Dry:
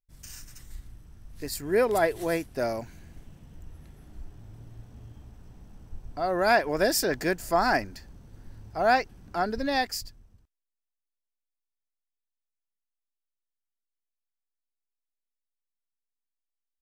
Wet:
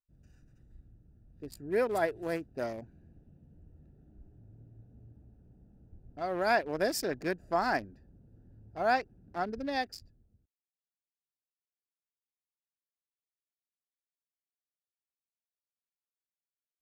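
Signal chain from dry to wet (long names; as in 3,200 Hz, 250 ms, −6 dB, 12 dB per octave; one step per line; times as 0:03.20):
adaptive Wiener filter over 41 samples
high-pass filter 89 Hz 6 dB per octave
high-shelf EQ 7,500 Hz −5 dB
level −5 dB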